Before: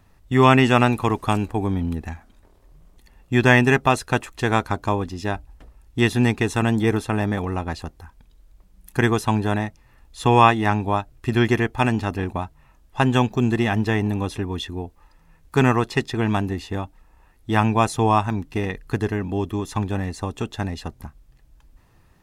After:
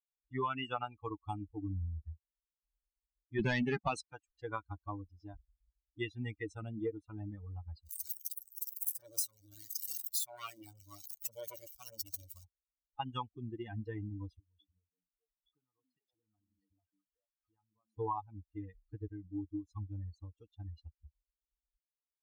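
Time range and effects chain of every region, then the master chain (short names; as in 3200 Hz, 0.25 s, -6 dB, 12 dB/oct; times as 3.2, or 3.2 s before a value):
3.39–4.01 HPF 95 Hz 6 dB/oct + bell 190 Hz +11 dB 0.43 oct + sample leveller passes 3
7.83–12.44 switching spikes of -8.5 dBFS + core saturation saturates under 2500 Hz
14.39–17.98 delay with a stepping band-pass 0.217 s, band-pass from 220 Hz, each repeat 1.4 oct, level -1 dB + compressor 3:1, threshold -37 dBFS
whole clip: per-bin expansion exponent 3; compressor 5:1, threshold -34 dBFS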